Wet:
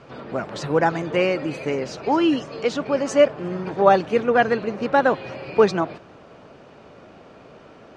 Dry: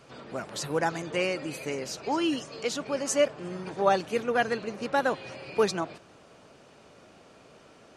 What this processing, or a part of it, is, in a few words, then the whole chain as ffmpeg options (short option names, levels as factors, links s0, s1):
through cloth: -af "lowpass=6300,highshelf=f=3300:g=-12,volume=2.82"